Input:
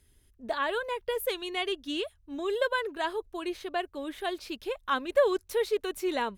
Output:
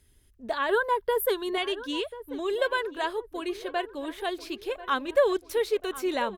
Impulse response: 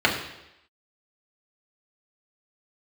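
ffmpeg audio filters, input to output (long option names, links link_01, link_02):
-filter_complex "[0:a]asettb=1/sr,asplit=3[link_01][link_02][link_03];[link_01]atrim=end=0.694[link_04];[link_02]atrim=start=0.69:end=1.58,asetpts=PTS-STARTPTS,afade=type=in:duration=0.004:curve=qsin,afade=type=out:start_time=0.886:duration=0.004:curve=qsin,equalizer=frequency=400:width_type=o:width=0.33:gain=10,equalizer=frequency=1000:width_type=o:width=0.33:gain=9,equalizer=frequency=1600:width_type=o:width=0.33:gain=8,equalizer=frequency=2500:width_type=o:width=0.33:gain=-12,equalizer=frequency=6300:width_type=o:width=0.33:gain=-8,equalizer=frequency=12500:width_type=o:width=0.33:gain=7[link_05];[link_03]atrim=start=1.576[link_06];[link_04][link_05]acrossfade=duration=0.004:curve1=hsin:curve2=qsin[link_07];[link_07][link_06]acrossfade=duration=0.004:curve1=qsin:curve2=hsin,asplit=2[link_08][link_09];[link_09]adelay=1039,lowpass=frequency=2400:poles=1,volume=-15dB,asplit=2[link_10][link_11];[link_11]adelay=1039,lowpass=frequency=2400:poles=1,volume=0.48,asplit=2[link_12][link_13];[link_13]adelay=1039,lowpass=frequency=2400:poles=1,volume=0.48,asplit=2[link_14][link_15];[link_15]adelay=1039,lowpass=frequency=2400:poles=1,volume=0.48[link_16];[link_08][link_10][link_12][link_14][link_16]amix=inputs=5:normalize=0,volume=1.5dB"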